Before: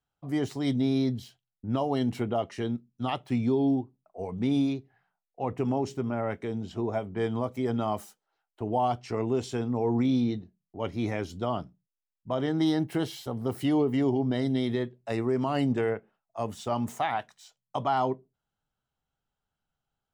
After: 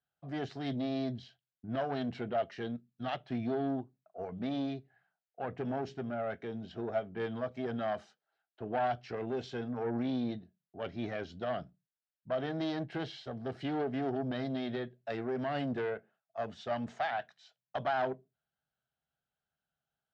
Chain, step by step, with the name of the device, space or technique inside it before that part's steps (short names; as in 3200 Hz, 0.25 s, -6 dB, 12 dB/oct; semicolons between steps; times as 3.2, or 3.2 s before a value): guitar amplifier (tube stage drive 23 dB, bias 0.5; tone controls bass +4 dB, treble +10 dB; speaker cabinet 88–4000 Hz, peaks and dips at 100 Hz -9 dB, 200 Hz -3 dB, 300 Hz -4 dB, 660 Hz +7 dB, 980 Hz -5 dB, 1600 Hz +8 dB); gain -4.5 dB